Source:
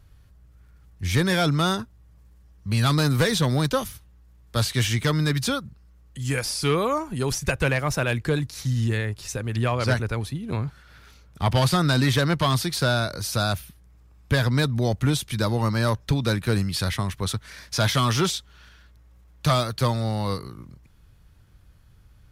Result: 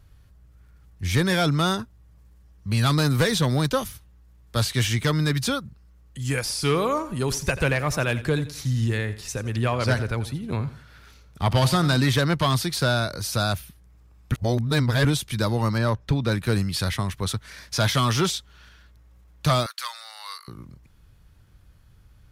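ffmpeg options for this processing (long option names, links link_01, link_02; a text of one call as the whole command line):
ffmpeg -i in.wav -filter_complex "[0:a]asettb=1/sr,asplit=3[link_01][link_02][link_03];[link_01]atrim=end=6.414[link_04];[link_02]atrim=start=6.41:end=11.97,asetpts=PTS-STARTPTS,afade=type=in:duration=0.004:curve=qsin,afade=type=out:start_time=5.556:duration=0.004:curve=qsin,aecho=1:1:86|172|258:0.178|0.0622|0.0218,atrim=end_sample=245196[link_05];[link_03]atrim=start=11.966[link_06];[link_04][link_05]acrossfade=duration=0.004:curve1=hsin:curve2=qsin[link_07];[link_07][link_06]acrossfade=duration=0.004:curve1=qsin:curve2=hsin,asettb=1/sr,asplit=3[link_08][link_09][link_10];[link_08]atrim=end=15.784[link_11];[link_09]atrim=start=15.78:end=16.32,asetpts=PTS-STARTPTS,afade=type=in:duration=0.004:curve=qsin,afade=type=out:start_time=0.536:duration=0.004:curve=qsin,highshelf=frequency=4600:gain=-10.5[link_12];[link_10]atrim=start=16.316[link_13];[link_11][link_12]acrossfade=duration=0.004:curve1=hsin:curve2=qsin[link_14];[link_14][link_13]acrossfade=duration=0.004:curve1=qsin:curve2=hsin,asettb=1/sr,asplit=3[link_15][link_16][link_17];[link_15]atrim=end=19.664[link_18];[link_16]atrim=start=19.66:end=20.48,asetpts=PTS-STARTPTS,afade=type=in:duration=0.004:curve=qsin,afade=type=out:start_time=0.816:duration=0.004:curve=qsin,highpass=frequency=1200:width=0.5412,highpass=frequency=1200:width=1.3066[link_19];[link_17]atrim=start=20.476[link_20];[link_18][link_19]acrossfade=duration=0.004:curve1=hsin:curve2=qsin[link_21];[link_21][link_20]acrossfade=duration=0.004:curve1=qsin:curve2=hsin,asplit=3[link_22][link_23][link_24];[link_22]atrim=end=14.322[link_25];[link_23]atrim=start=14.318:end=15.052,asetpts=PTS-STARTPTS,areverse[link_26];[link_24]atrim=start=15.048[link_27];[link_25][link_26]acrossfade=duration=0.004:curve1=hsin:curve2=hsin[link_28];[link_28][link_27]acrossfade=duration=0.004:curve1=hsin:curve2=hsin" out.wav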